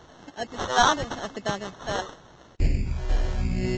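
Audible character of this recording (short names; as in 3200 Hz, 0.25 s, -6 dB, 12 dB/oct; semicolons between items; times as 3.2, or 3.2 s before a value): phasing stages 2, 0.87 Hz, lowest notch 160–1700 Hz; aliases and images of a low sample rate 2400 Hz, jitter 0%; Vorbis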